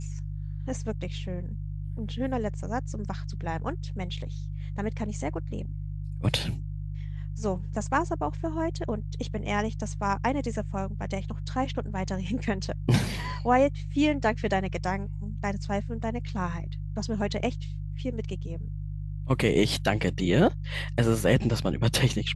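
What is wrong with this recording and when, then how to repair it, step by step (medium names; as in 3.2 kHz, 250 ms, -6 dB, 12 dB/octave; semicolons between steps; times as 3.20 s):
hum 50 Hz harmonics 3 -34 dBFS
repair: de-hum 50 Hz, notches 3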